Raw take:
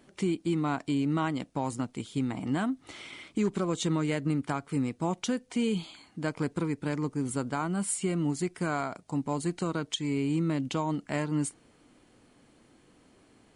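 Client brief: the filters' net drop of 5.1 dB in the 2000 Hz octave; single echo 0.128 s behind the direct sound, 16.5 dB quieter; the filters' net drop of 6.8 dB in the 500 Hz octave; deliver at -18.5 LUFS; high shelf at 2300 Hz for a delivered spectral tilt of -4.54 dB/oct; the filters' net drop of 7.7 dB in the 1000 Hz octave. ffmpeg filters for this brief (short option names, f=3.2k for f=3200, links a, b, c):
-af "equalizer=f=500:t=o:g=-8.5,equalizer=f=1k:t=o:g=-6.5,equalizer=f=2k:t=o:g=-7,highshelf=f=2.3k:g=6,aecho=1:1:128:0.15,volume=14dB"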